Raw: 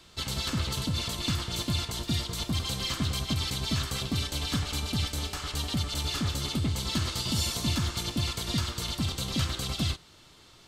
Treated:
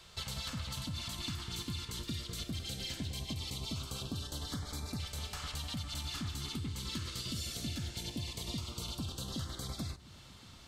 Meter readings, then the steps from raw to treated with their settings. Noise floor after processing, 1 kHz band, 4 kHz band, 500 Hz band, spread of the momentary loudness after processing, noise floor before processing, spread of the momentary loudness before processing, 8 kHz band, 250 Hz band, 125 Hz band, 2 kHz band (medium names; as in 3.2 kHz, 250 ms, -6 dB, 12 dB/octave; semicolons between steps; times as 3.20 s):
-54 dBFS, -10.5 dB, -9.5 dB, -10.0 dB, 2 LU, -55 dBFS, 3 LU, -8.5 dB, -9.5 dB, -10.0 dB, -10.5 dB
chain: compression 3:1, threshold -38 dBFS, peak gain reduction 11 dB; LFO notch saw up 0.2 Hz 270–3200 Hz; on a send: filtered feedback delay 1069 ms, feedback 76%, low-pass 860 Hz, level -19 dB; on the sum: trim -1 dB